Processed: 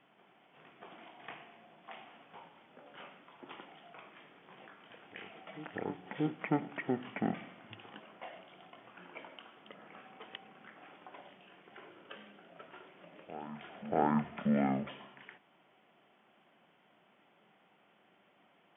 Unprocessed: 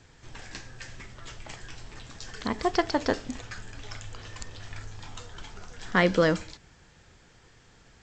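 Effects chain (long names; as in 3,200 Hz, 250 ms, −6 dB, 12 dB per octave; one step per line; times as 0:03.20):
high-pass filter 420 Hz 24 dB per octave
echo ahead of the sound 271 ms −15.5 dB
wrong playback speed 78 rpm record played at 33 rpm
level −7 dB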